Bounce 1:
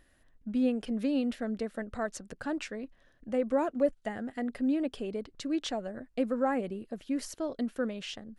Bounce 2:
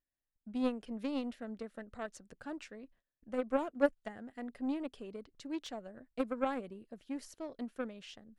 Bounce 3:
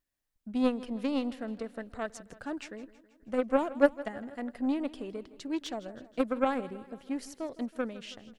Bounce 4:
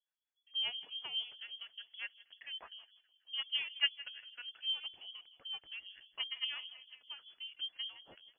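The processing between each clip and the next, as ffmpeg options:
-af "agate=range=-20dB:threshold=-54dB:ratio=16:detection=peak,aeval=exprs='0.168*(cos(1*acos(clip(val(0)/0.168,-1,1)))-cos(1*PI/2))+0.0422*(cos(3*acos(clip(val(0)/0.168,-1,1)))-cos(3*PI/2))':c=same,volume=1dB"
-af "aecho=1:1:161|322|483|644|805:0.126|0.0718|0.0409|0.0233|0.0133,volume=6dB"
-filter_complex "[0:a]acrossover=split=480[a][b];[a]aeval=exprs='val(0)*(1-1/2+1/2*cos(2*PI*5.1*n/s))':c=same[c];[b]aeval=exprs='val(0)*(1-1/2-1/2*cos(2*PI*5.1*n/s))':c=same[d];[c][d]amix=inputs=2:normalize=0,lowpass=f=2.9k:t=q:w=0.5098,lowpass=f=2.9k:t=q:w=0.6013,lowpass=f=2.9k:t=q:w=0.9,lowpass=f=2.9k:t=q:w=2.563,afreqshift=-3400,volume=-5dB"

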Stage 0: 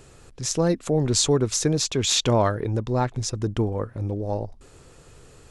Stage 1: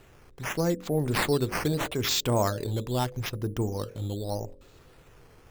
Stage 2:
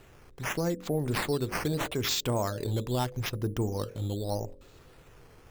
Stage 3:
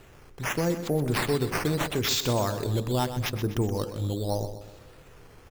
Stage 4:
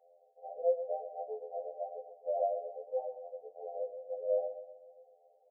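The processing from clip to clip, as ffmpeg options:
-af "acrusher=samples=8:mix=1:aa=0.000001:lfo=1:lforange=8:lforate=0.8,bandreject=f=45.53:t=h:w=4,bandreject=f=91.06:t=h:w=4,bandreject=f=136.59:t=h:w=4,bandreject=f=182.12:t=h:w=4,bandreject=f=227.65:t=h:w=4,bandreject=f=273.18:t=h:w=4,bandreject=f=318.71:t=h:w=4,bandreject=f=364.24:t=h:w=4,bandreject=f=409.77:t=h:w=4,bandreject=f=455.3:t=h:w=4,bandreject=f=500.83:t=h:w=4,bandreject=f=546.36:t=h:w=4,bandreject=f=591.89:t=h:w=4,volume=-4.5dB"
-af "alimiter=limit=-20dB:level=0:latency=1:release=211"
-af "aecho=1:1:125|250|375|500|625:0.282|0.127|0.0571|0.0257|0.0116,volume=3dB"
-af "asuperpass=centerf=600:order=20:qfactor=1.8,afftfilt=real='re*2*eq(mod(b,4),0)':imag='im*2*eq(mod(b,4),0)':win_size=2048:overlap=0.75"

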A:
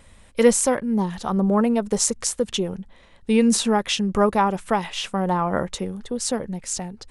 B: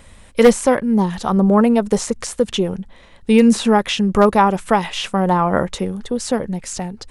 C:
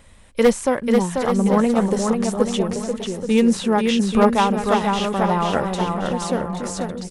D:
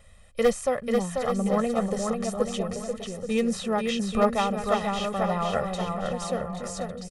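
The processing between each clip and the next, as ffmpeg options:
-filter_complex "[0:a]acrossover=split=3100[a][b];[b]acompressor=threshold=-31dB:ratio=4:attack=1:release=60[c];[a][c]amix=inputs=2:normalize=0,aeval=exprs='0.422*(abs(mod(val(0)/0.422+3,4)-2)-1)':c=same,volume=6dB"
-filter_complex "[0:a]asplit=2[a][b];[b]aecho=0:1:490|833|1073|1241|1359:0.631|0.398|0.251|0.158|0.1[c];[a][c]amix=inputs=2:normalize=0,aeval=exprs='1.26*(cos(1*acos(clip(val(0)/1.26,-1,1)))-cos(1*PI/2))+0.0708*(cos(3*acos(clip(val(0)/1.26,-1,1)))-cos(3*PI/2))':c=same,volume=-3.5dB"
-af "aecho=1:1:1.6:0.74,volume=-8dB"

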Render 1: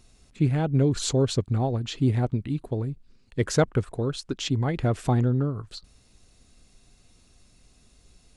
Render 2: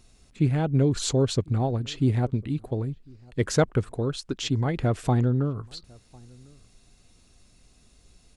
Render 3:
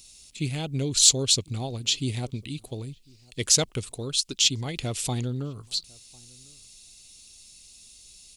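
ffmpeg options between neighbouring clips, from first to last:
-filter_complex "[0:a]asplit=2[a][b];[b]adelay=1050,volume=-27dB,highshelf=f=4k:g=-23.6[c];[a][c]amix=inputs=2:normalize=0"
-af "aexciter=amount=7.2:drive=6.6:freq=2.4k,volume=-7dB"

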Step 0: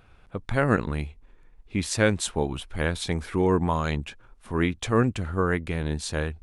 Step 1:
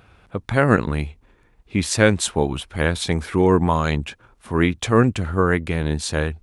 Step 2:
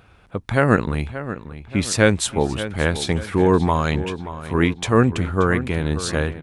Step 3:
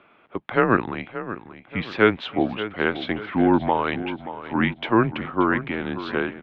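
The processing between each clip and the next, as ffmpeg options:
-af "highpass=52,volume=6dB"
-filter_complex "[0:a]asplit=2[a][b];[b]adelay=580,lowpass=f=3.6k:p=1,volume=-12.5dB,asplit=2[c][d];[d]adelay=580,lowpass=f=3.6k:p=1,volume=0.44,asplit=2[e][f];[f]adelay=580,lowpass=f=3.6k:p=1,volume=0.44,asplit=2[g][h];[h]adelay=580,lowpass=f=3.6k:p=1,volume=0.44[i];[a][c][e][g][i]amix=inputs=5:normalize=0"
-af "highpass=f=300:t=q:w=0.5412,highpass=f=300:t=q:w=1.307,lowpass=f=3.4k:t=q:w=0.5176,lowpass=f=3.4k:t=q:w=0.7071,lowpass=f=3.4k:t=q:w=1.932,afreqshift=-110"

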